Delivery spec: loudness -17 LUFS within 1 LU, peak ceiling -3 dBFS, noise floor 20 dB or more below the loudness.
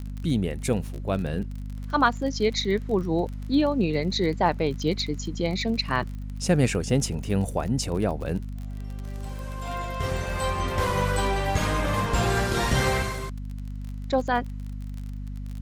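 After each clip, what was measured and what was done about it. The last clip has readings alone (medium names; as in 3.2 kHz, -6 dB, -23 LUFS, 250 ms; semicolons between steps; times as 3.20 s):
tick rate 32 per s; hum 50 Hz; highest harmonic 250 Hz; hum level -31 dBFS; loudness -26.0 LUFS; peak level -7.5 dBFS; loudness target -17.0 LUFS
-> de-click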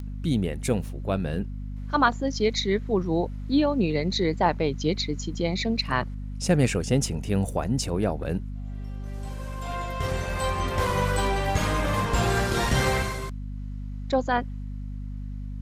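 tick rate 0.064 per s; hum 50 Hz; highest harmonic 250 Hz; hum level -31 dBFS
-> hum notches 50/100/150/200/250 Hz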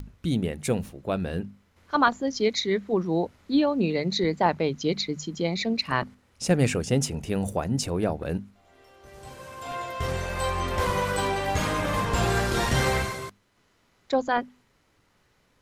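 hum not found; loudness -26.5 LUFS; peak level -7.5 dBFS; loudness target -17.0 LUFS
-> trim +9.5 dB; peak limiter -3 dBFS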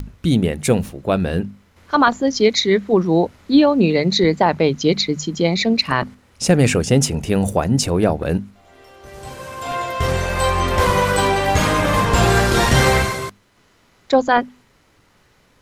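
loudness -17.5 LUFS; peak level -3.0 dBFS; noise floor -57 dBFS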